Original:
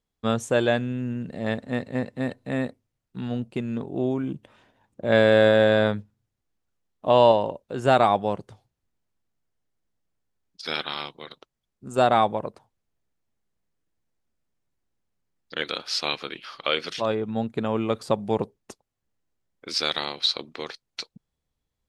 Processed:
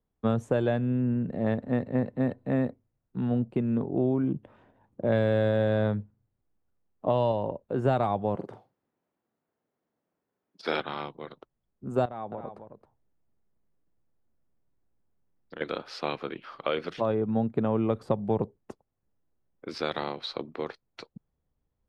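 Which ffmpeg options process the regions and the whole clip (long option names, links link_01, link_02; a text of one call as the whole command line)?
ffmpeg -i in.wav -filter_complex "[0:a]asettb=1/sr,asplit=3[link_01][link_02][link_03];[link_01]atrim=end=8.354[link_04];[link_02]atrim=start=8.35:end=10.8,asetpts=PTS-STARTPTS,afade=type=in:duration=0.004:curve=qsin,afade=type=out:start_time=2.446:duration=0.004:curve=qsin,highpass=250,acontrast=49,asplit=2[link_05][link_06];[link_06]adelay=45,volume=-7dB[link_07];[link_05][link_07]amix=inputs=2:normalize=0,atrim=end_sample=108045[link_08];[link_03]atrim=start=10.796[link_09];[link_04][link_08]acrossfade=duration=0.004:curve1=hsin:curve2=qsin[link_10];[link_10][link_09]acrossfade=duration=0.004:curve1=qsin:curve2=hsin,asettb=1/sr,asplit=3[link_11][link_12][link_13];[link_11]atrim=end=12.054[link_14];[link_12]atrim=start=12.05:end=15.61,asetpts=PTS-STARTPTS,afade=type=in:duration=0.004:curve=qsin,afade=type=out:start_time=3.556:duration=0.004:curve=qsin,acompressor=threshold=-40dB:ratio=2.5:attack=3.2:release=140:knee=1:detection=peak,aecho=1:1:269:0.355,atrim=end_sample=156996[link_15];[link_13]atrim=start=15.606[link_16];[link_14][link_15]acrossfade=duration=0.004:curve1=hsin:curve2=qsin[link_17];[link_17][link_16]acrossfade=duration=0.004:curve1=qsin:curve2=hsin,highshelf=frequency=2300:gain=-11,acrossover=split=140|3000[link_18][link_19][link_20];[link_19]acompressor=threshold=-25dB:ratio=6[link_21];[link_18][link_21][link_20]amix=inputs=3:normalize=0,equalizer=frequency=6900:width=0.35:gain=-11,volume=3dB" out.wav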